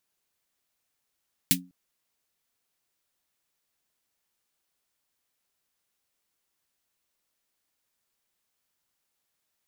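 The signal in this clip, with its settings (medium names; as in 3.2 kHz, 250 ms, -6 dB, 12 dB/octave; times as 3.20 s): snare drum length 0.20 s, tones 180 Hz, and 270 Hz, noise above 2.1 kHz, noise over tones 10 dB, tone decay 0.32 s, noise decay 0.10 s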